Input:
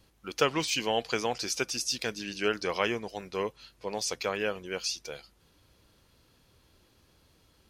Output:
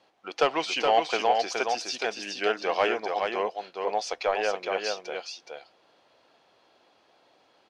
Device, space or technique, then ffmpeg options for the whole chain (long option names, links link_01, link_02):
intercom: -filter_complex "[0:a]highpass=380,lowpass=4000,equalizer=frequency=720:width_type=o:width=0.58:gain=11,asoftclip=type=tanh:threshold=-13.5dB,aecho=1:1:420:0.596,asplit=3[link_01][link_02][link_03];[link_01]afade=type=out:start_time=4:duration=0.02[link_04];[link_02]asubboost=boost=8.5:cutoff=52,afade=type=in:start_time=4:duration=0.02,afade=type=out:start_time=4.5:duration=0.02[link_05];[link_03]afade=type=in:start_time=4.5:duration=0.02[link_06];[link_04][link_05][link_06]amix=inputs=3:normalize=0,volume=2.5dB"